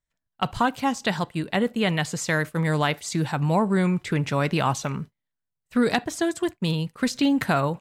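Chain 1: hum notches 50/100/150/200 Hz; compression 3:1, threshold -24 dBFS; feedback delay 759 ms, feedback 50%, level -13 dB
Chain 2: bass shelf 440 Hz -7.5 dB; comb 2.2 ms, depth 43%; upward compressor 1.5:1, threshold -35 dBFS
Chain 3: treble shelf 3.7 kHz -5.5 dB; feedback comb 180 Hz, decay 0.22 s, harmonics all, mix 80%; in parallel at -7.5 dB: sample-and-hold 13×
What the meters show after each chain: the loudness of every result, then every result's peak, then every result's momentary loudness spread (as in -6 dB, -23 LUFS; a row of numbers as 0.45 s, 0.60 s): -28.5 LUFS, -27.5 LUFS, -30.0 LUFS; -11.5 dBFS, -7.5 dBFS, -12.0 dBFS; 6 LU, 6 LU, 10 LU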